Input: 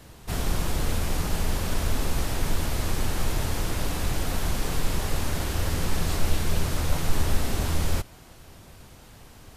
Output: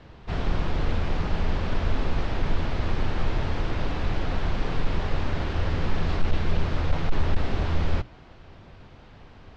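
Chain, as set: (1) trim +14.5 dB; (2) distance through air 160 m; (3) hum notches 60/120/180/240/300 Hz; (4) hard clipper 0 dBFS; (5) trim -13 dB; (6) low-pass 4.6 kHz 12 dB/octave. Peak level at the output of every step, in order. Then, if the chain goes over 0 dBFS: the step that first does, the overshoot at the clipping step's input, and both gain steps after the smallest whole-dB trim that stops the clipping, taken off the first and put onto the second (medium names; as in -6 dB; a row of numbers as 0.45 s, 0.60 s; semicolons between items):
+5.5 dBFS, +5.5 dBFS, +5.5 dBFS, 0.0 dBFS, -13.0 dBFS, -13.0 dBFS; step 1, 5.5 dB; step 1 +8.5 dB, step 5 -7 dB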